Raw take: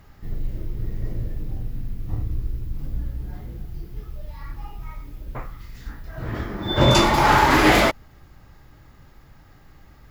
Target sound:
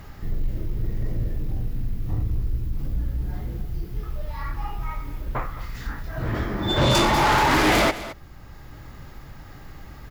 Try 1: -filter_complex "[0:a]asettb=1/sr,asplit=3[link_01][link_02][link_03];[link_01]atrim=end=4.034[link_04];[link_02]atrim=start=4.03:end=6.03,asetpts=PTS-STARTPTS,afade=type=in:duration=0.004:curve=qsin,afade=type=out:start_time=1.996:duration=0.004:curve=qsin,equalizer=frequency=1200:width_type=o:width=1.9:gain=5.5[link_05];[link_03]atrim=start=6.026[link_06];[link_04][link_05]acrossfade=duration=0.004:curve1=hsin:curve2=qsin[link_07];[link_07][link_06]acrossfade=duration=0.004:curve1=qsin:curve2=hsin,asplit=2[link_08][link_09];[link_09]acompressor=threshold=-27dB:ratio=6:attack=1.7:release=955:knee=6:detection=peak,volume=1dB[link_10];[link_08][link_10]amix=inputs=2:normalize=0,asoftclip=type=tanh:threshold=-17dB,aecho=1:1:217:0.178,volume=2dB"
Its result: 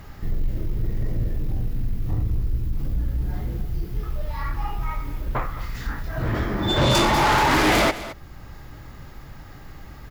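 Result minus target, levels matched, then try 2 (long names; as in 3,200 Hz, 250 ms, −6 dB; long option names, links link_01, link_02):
downward compressor: peak gain reduction −9.5 dB
-filter_complex "[0:a]asettb=1/sr,asplit=3[link_01][link_02][link_03];[link_01]atrim=end=4.034[link_04];[link_02]atrim=start=4.03:end=6.03,asetpts=PTS-STARTPTS,afade=type=in:duration=0.004:curve=qsin,afade=type=out:start_time=1.996:duration=0.004:curve=qsin,equalizer=frequency=1200:width_type=o:width=1.9:gain=5.5[link_05];[link_03]atrim=start=6.026[link_06];[link_04][link_05]acrossfade=duration=0.004:curve1=hsin:curve2=qsin[link_07];[link_07][link_06]acrossfade=duration=0.004:curve1=qsin:curve2=hsin,asplit=2[link_08][link_09];[link_09]acompressor=threshold=-38.5dB:ratio=6:attack=1.7:release=955:knee=6:detection=peak,volume=1dB[link_10];[link_08][link_10]amix=inputs=2:normalize=0,asoftclip=type=tanh:threshold=-17dB,aecho=1:1:217:0.178,volume=2dB"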